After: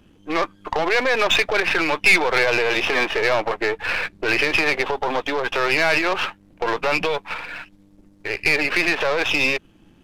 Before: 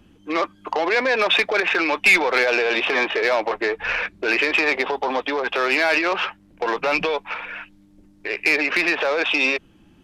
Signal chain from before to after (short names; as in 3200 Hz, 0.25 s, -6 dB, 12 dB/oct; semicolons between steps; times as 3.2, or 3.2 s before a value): half-wave gain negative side -7 dB; gain +2.5 dB